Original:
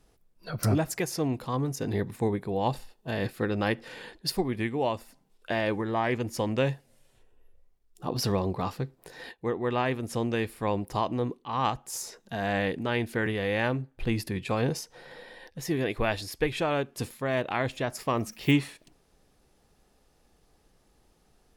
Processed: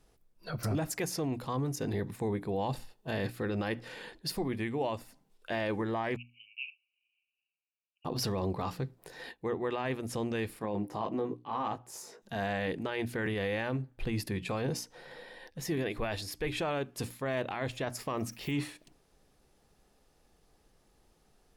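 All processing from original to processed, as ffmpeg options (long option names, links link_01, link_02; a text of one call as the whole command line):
ffmpeg -i in.wav -filter_complex "[0:a]asettb=1/sr,asplit=3[link_01][link_02][link_03];[link_01]atrim=end=6.164[link_04];[link_02]atrim=start=6.16:end=8.05,asetpts=PTS-STARTPTS,afade=type=in:duration=0.004:curve=qsin,afade=type=out:start_time=1.886:duration=0.004:curve=qsin,asuperpass=centerf=2600:order=12:qfactor=3.7,aecho=1:1:5.3:0.41,atrim=end_sample=83349[link_05];[link_03]atrim=start=8.046[link_06];[link_04][link_05]acrossfade=duration=0.004:curve1=hsin:curve2=qsin[link_07];[link_07][link_06]acrossfade=duration=0.004:curve1=qsin:curve2=hsin,asettb=1/sr,asplit=3[link_08][link_09][link_10];[link_08]atrim=end=10.594[link_11];[link_09]atrim=start=10.59:end=12.22,asetpts=PTS-STARTPTS,afade=type=in:duration=0.004:curve=qsin,afade=type=out:start_time=1.626:duration=0.004:curve=qsin,highpass=150,highshelf=frequency=2000:gain=-10,asplit=2[link_12][link_13];[link_13]adelay=19,volume=-4dB[link_14];[link_12][link_14]amix=inputs=2:normalize=0,atrim=end_sample=71883[link_15];[link_10]atrim=start=12.216[link_16];[link_11][link_15]acrossfade=duration=0.004:curve1=hsin:curve2=qsin[link_17];[link_17][link_16]acrossfade=duration=0.004:curve1=qsin:curve2=hsin,bandreject=frequency=60:width_type=h:width=6,bandreject=frequency=120:width_type=h:width=6,bandreject=frequency=180:width_type=h:width=6,bandreject=frequency=240:width_type=h:width=6,bandreject=frequency=300:width_type=h:width=6,alimiter=limit=-22dB:level=0:latency=1:release=11,volume=-2dB" out.wav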